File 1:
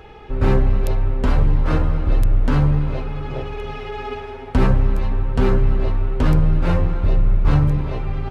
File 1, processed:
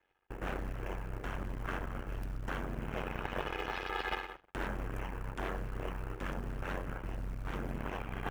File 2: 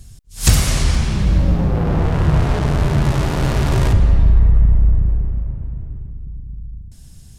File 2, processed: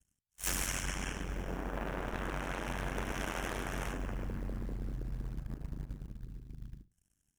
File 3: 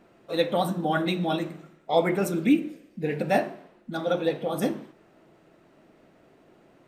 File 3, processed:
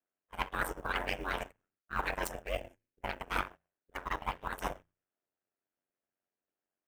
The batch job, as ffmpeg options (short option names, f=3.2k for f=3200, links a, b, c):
-af "asuperstop=centerf=4200:order=20:qfactor=2,aeval=exprs='0.891*(cos(1*acos(clip(val(0)/0.891,-1,1)))-cos(1*PI/2))+0.251*(cos(3*acos(clip(val(0)/0.891,-1,1)))-cos(3*PI/2))+0.0282*(cos(4*acos(clip(val(0)/0.891,-1,1)))-cos(4*PI/2))+0.316*(cos(8*acos(clip(val(0)/0.891,-1,1)))-cos(8*PI/2))':c=same,agate=range=-16dB:threshold=-36dB:ratio=16:detection=peak,areverse,acompressor=threshold=-23dB:ratio=16,areverse,lowshelf=f=440:g=-11,acrusher=bits=7:mode=log:mix=0:aa=0.000001,equalizer=f=1.6k:w=5.8:g=5,bandreject=f=60:t=h:w=6,bandreject=f=120:t=h:w=6,aeval=exprs='val(0)*sin(2*PI*46*n/s)':c=same,volume=1dB"